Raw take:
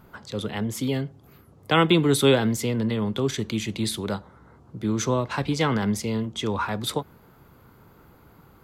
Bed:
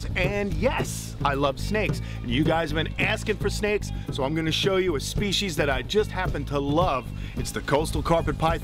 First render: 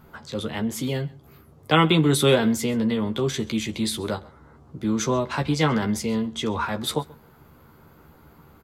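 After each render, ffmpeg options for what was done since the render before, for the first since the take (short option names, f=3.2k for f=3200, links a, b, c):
-filter_complex "[0:a]asplit=2[a][b];[b]adelay=13,volume=-5dB[c];[a][c]amix=inputs=2:normalize=0,aecho=1:1:133:0.0708"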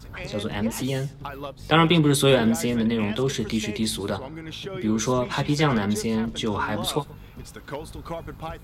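-filter_complex "[1:a]volume=-11.5dB[a];[0:a][a]amix=inputs=2:normalize=0"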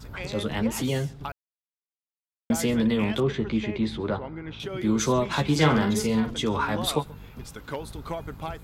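-filter_complex "[0:a]asettb=1/sr,asplit=3[a][b][c];[a]atrim=end=3.204[d];[b]atrim=start=3.2:end=4.6,asetpts=PTS-STARTPTS,afade=t=in:d=0.004:c=qsin,afade=t=out:st=1.396:d=0.004:c=qsin,lowpass=2.3k[e];[c]atrim=start=4.596[f];[d][e]acrossfade=d=0.004:c1=hsin:c2=qsin[g];[g][f]acrossfade=d=0.004:c1=qsin:c2=hsin,asettb=1/sr,asplit=3[h][i][j];[h]atrim=end=5.514[k];[i]atrim=start=5.51:end=6.34,asetpts=PTS-STARTPTS,afade=t=in:d=0.004:c=qsin,afade=t=out:st=0.826:d=0.004:c=qsin,asplit=2[l][m];[m]adelay=46,volume=-7dB[n];[l][n]amix=inputs=2:normalize=0,atrim=end_sample=36603[o];[j]atrim=start=6.336[p];[k][o]acrossfade=d=0.004:c1=hsin:c2=qsin[q];[q][p]acrossfade=d=0.004:c1=qsin:c2=hsin,asplit=3[r][s][t];[r]atrim=end=1.32,asetpts=PTS-STARTPTS,afade=t=out:st=1.316:d=0.004:c=hsin[u];[s]atrim=start=1.32:end=2.5,asetpts=PTS-STARTPTS,volume=0[v];[t]atrim=start=2.5,asetpts=PTS-STARTPTS,afade=t=in:d=0.004:c=hsin[w];[u][v][w]concat=n=3:v=0:a=1"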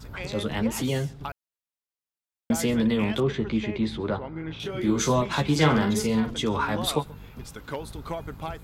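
-filter_complex "[0:a]asettb=1/sr,asplit=3[a][b][c];[a]atrim=end=4.334[d];[b]atrim=start=4.33:end=5.22,asetpts=PTS-STARTPTS,afade=t=in:d=0.004:c=qsin,afade=t=out:st=0.886:d=0.004:c=qsin,asplit=2[e][f];[f]adelay=25,volume=-4.5dB[g];[e][g]amix=inputs=2:normalize=0,atrim=end_sample=39249[h];[c]atrim=start=5.216[i];[d][h]acrossfade=d=0.004:c1=hsin:c2=qsin[j];[j][i]acrossfade=d=0.004:c1=qsin:c2=hsin"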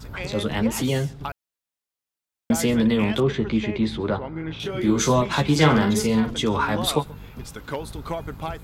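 -af "volume=3.5dB"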